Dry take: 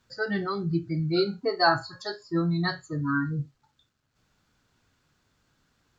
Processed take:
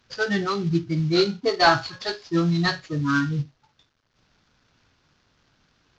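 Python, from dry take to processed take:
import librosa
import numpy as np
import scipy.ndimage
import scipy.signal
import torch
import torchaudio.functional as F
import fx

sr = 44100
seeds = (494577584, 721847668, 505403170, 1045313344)

y = fx.cvsd(x, sr, bps=32000)
y = fx.dynamic_eq(y, sr, hz=3300.0, q=1.1, threshold_db=-47.0, ratio=4.0, max_db=4)
y = y * 10.0 ** (4.5 / 20.0)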